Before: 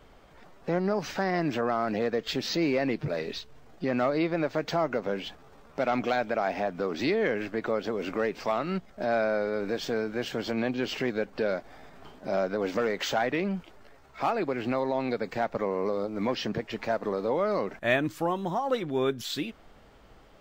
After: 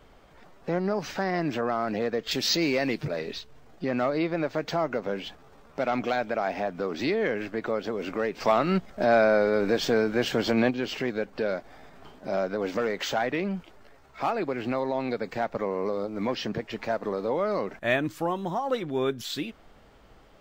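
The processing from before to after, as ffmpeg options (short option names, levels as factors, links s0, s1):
-filter_complex "[0:a]asettb=1/sr,asplit=3[s0][s1][s2];[s0]atrim=end=2.314[s3];[s1]atrim=start=2.31:end=3.08,asetpts=PTS-STARTPTS,afade=t=in:d=0.004:c=qsin,afade=t=out:st=0.766:d=0.004:c=qsin,highshelf=f=2900:g=11[s4];[s2]atrim=start=3.076[s5];[s3][s4]acrossfade=d=0.004:c1=hsin:c2=qsin[s6];[s6][s5]acrossfade=d=0.004:c1=qsin:c2=hsin,asplit=3[s7][s8][s9];[s7]afade=t=out:st=8.4:d=0.02[s10];[s8]acontrast=57,afade=t=in:st=8.4:d=0.02,afade=t=out:st=10.69:d=0.02[s11];[s9]afade=t=in:st=10.69:d=0.02[s12];[s10][s11][s12]amix=inputs=3:normalize=0"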